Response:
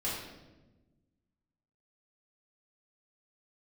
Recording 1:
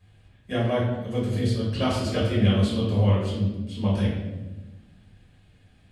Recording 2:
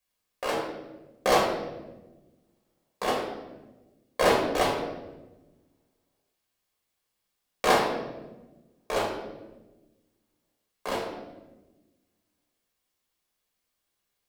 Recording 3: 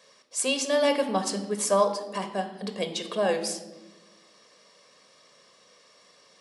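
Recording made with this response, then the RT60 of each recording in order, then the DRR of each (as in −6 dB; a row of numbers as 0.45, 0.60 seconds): 1; 1.1, 1.1, 1.2 seconds; −8.0, −3.0, 7.0 decibels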